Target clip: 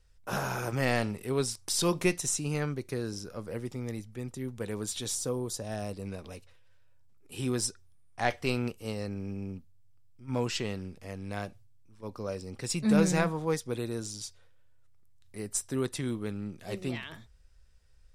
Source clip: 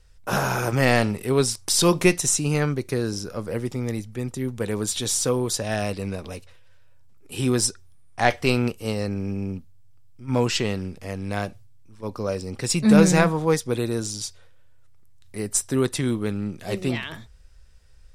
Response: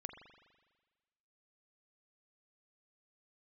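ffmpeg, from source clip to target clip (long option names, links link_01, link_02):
-filter_complex "[0:a]asettb=1/sr,asplit=3[link_01][link_02][link_03];[link_01]atrim=end=5.154[link_04];[link_02]atrim=start=5.15:end=6.06,asetpts=PTS-STARTPTS,afade=type=in:duration=0.004:curve=qsin,afade=type=out:start_time=0.906:duration=0.004:curve=qsin,equalizer=frequency=2300:width=0.73:gain=-8[link_05];[link_03]atrim=start=6.056[link_06];[link_04][link_05]acrossfade=duration=0.004:curve1=hsin:curve2=qsin[link_07];[link_07][link_06]acrossfade=duration=0.004:curve1=qsin:curve2=hsin,volume=-9dB"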